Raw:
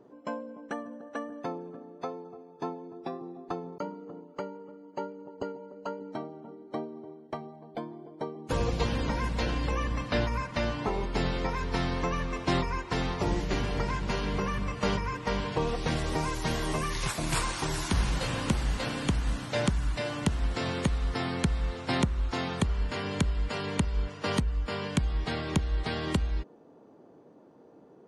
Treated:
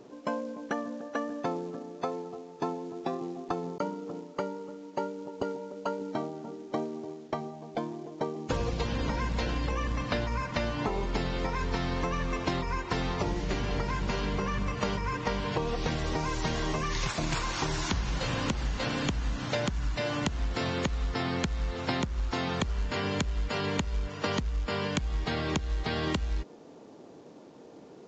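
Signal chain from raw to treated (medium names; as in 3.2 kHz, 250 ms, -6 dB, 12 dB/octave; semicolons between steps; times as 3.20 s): compression 16:1, threshold -31 dBFS, peak gain reduction 12.5 dB; companded quantiser 6-bit; resampled via 16 kHz; trim +5 dB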